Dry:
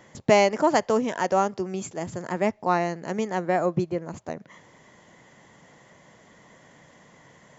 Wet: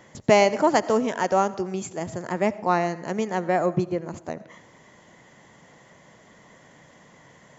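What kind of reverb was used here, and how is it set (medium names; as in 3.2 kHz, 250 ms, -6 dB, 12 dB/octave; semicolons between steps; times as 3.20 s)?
algorithmic reverb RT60 0.79 s, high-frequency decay 0.55×, pre-delay 45 ms, DRR 17 dB; trim +1 dB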